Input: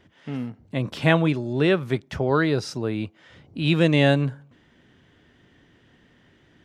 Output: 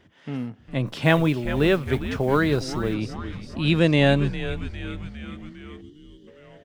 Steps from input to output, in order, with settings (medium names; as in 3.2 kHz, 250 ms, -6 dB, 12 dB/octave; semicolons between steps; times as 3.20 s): frequency-shifting echo 405 ms, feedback 62%, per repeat -120 Hz, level -11 dB; 0.86–2.94 s: modulation noise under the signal 32 dB; 5.81–6.28 s: time-frequency box 410–2800 Hz -18 dB